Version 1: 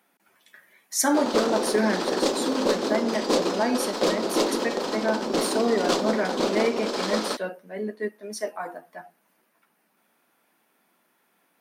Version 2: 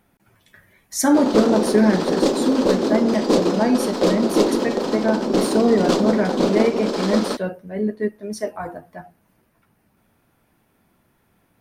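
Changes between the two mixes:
speech: remove HPF 190 Hz 24 dB/oct; master: add low shelf 430 Hz +11.5 dB

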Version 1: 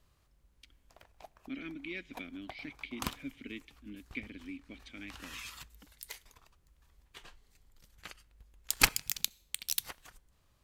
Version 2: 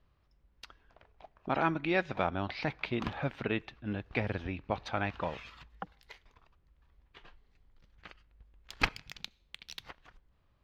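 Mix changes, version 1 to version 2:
speech: remove vowel filter i; master: add air absorption 260 m

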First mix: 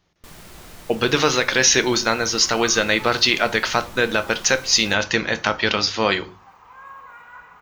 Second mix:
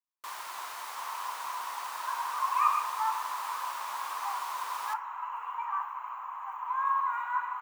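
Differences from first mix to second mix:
speech: muted; master: add resonant high-pass 1000 Hz, resonance Q 5.8

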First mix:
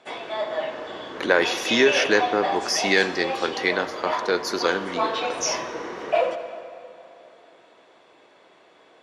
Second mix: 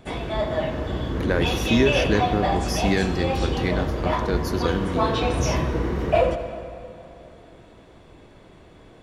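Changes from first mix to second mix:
speech -8.5 dB; master: remove BPF 530–7000 Hz

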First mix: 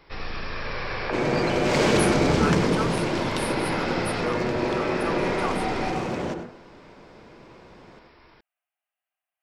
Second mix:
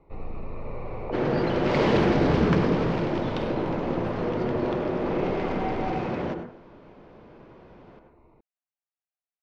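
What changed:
speech -12.0 dB; first sound: add running mean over 27 samples; master: add air absorption 230 m

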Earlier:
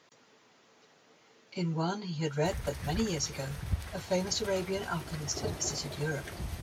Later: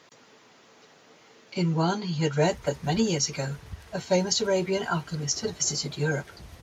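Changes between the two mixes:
speech +7.0 dB; background -8.5 dB

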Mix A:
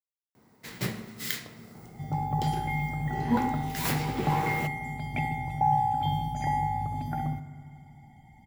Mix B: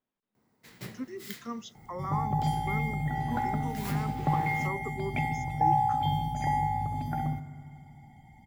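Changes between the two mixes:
speech: unmuted; first sound -10.5 dB

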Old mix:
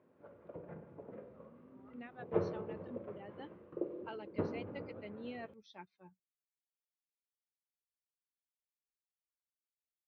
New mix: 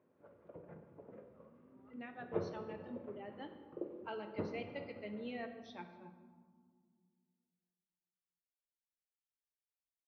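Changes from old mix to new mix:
speech: send on; background -4.5 dB

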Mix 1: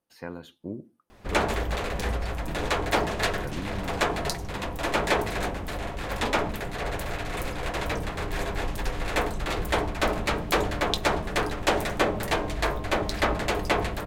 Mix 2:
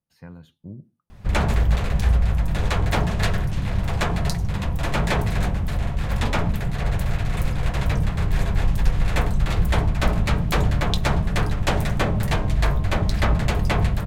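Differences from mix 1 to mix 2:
speech -8.5 dB; master: add resonant low shelf 220 Hz +11.5 dB, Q 1.5

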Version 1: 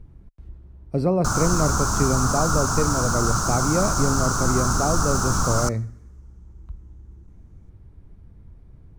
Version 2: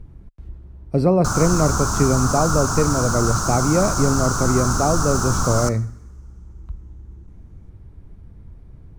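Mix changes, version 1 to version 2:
speech +4.5 dB; background: send +9.0 dB

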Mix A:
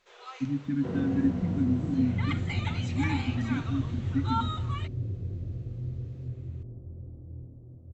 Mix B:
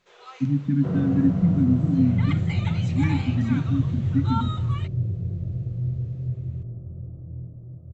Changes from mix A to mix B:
second sound: add thirty-one-band EQ 250 Hz -11 dB, 630 Hz +7 dB, 1250 Hz +8 dB; master: add bell 160 Hz +12.5 dB 1.3 oct

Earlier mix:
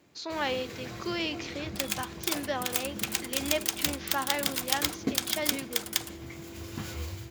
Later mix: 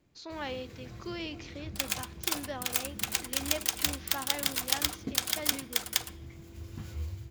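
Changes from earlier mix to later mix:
speech -8.0 dB; first sound -11.5 dB; master: remove HPF 330 Hz 6 dB/oct

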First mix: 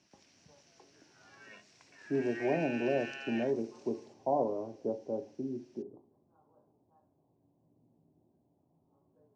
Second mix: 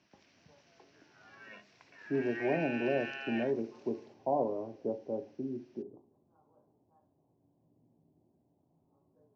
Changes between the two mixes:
background +4.0 dB; master: add air absorption 190 m

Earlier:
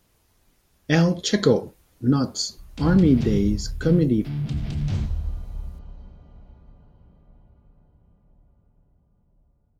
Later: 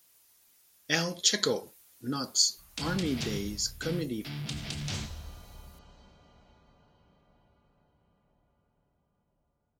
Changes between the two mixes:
speech -6.5 dB; master: add tilt +4 dB/oct

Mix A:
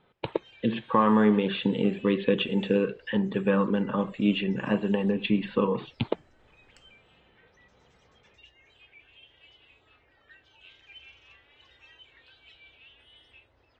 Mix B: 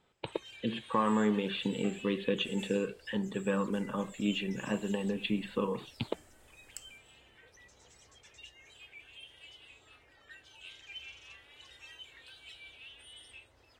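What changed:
speech -8.0 dB; master: remove air absorption 200 m

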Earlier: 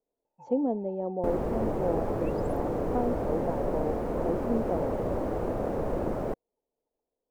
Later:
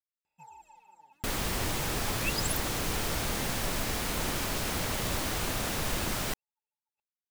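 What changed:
speech: muted; master: remove EQ curve 140 Hz 0 dB, 520 Hz +11 dB, 3500 Hz -26 dB

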